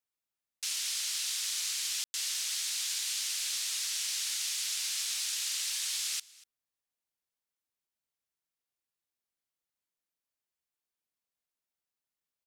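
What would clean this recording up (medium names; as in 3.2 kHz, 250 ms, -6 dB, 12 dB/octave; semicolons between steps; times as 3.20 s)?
room tone fill 2.04–2.14 s; inverse comb 240 ms -22.5 dB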